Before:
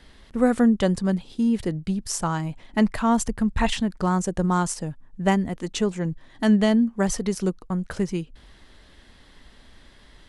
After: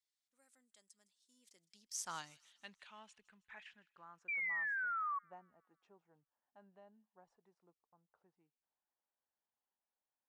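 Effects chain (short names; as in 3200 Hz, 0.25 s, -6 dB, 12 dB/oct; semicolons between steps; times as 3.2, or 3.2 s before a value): Doppler pass-by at 2.15, 25 m/s, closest 1.7 m; dynamic EQ 5200 Hz, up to -5 dB, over -57 dBFS, Q 0.84; band-pass sweep 7500 Hz -> 830 Hz, 1.4–5.01; painted sound fall, 4.28–5.19, 1100–2400 Hz -43 dBFS; on a send: thin delay 0.16 s, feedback 50%, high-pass 2700 Hz, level -18.5 dB; on the sum: gain +4.5 dB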